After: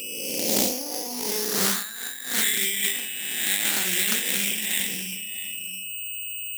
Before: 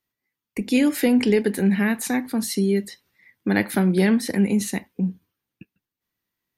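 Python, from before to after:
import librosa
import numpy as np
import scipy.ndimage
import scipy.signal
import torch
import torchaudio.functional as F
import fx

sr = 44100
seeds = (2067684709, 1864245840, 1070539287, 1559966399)

y = fx.spec_swells(x, sr, rise_s=1.16)
y = y + 10.0 ** (-15.0 / 20.0) * np.pad(y, (int(648 * sr / 1000.0), 0))[:len(y)]
y = fx.rev_schroeder(y, sr, rt60_s=0.55, comb_ms=33, drr_db=3.5)
y = fx.filter_sweep_bandpass(y, sr, from_hz=500.0, to_hz=3300.0, start_s=0.16, end_s=3.38, q=5.4)
y = fx.transient(y, sr, attack_db=-8, sustain_db=8)
y = scipy.signal.sosfilt(scipy.signal.butter(4, 120.0, 'highpass', fs=sr, output='sos'), y)
y = fx.peak_eq(y, sr, hz=2900.0, db=4.5, octaves=0.83)
y = y + 10.0 ** (-47.0 / 20.0) * np.sin(2.0 * np.pi * 2600.0 * np.arange(len(y)) / sr)
y = (np.kron(scipy.signal.resample_poly(y, 1, 8), np.eye(8)[0]) * 8)[:len(y)]
y = fx.over_compress(y, sr, threshold_db=-30.0, ratio=-0.5)
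y = fx.low_shelf(y, sr, hz=410.0, db=7.0)
y = fx.doppler_dist(y, sr, depth_ms=0.45)
y = F.gain(torch.from_numpy(y), 7.0).numpy()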